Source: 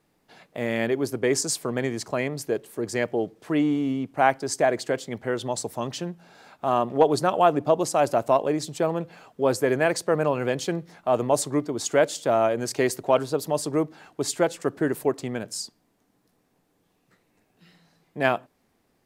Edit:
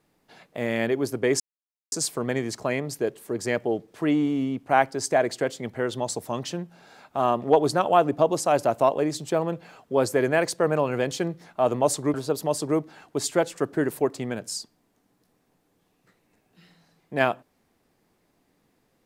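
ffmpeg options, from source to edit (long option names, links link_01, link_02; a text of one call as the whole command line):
ffmpeg -i in.wav -filter_complex "[0:a]asplit=3[link_01][link_02][link_03];[link_01]atrim=end=1.4,asetpts=PTS-STARTPTS,afade=type=out:start_time=1.396:duration=0.004:curve=hsin,apad=pad_dur=0.52[link_04];[link_02]atrim=start=1.4:end=11.622,asetpts=PTS-STARTPTS,afade=type=in:duration=0.004:curve=hsin[link_05];[link_03]atrim=start=13.178[link_06];[link_04][link_05]concat=n=2:v=0:a=1[link_07];[link_07][link_06]acrossfade=duration=0.004:curve1=hsin:curve2=hsin" out.wav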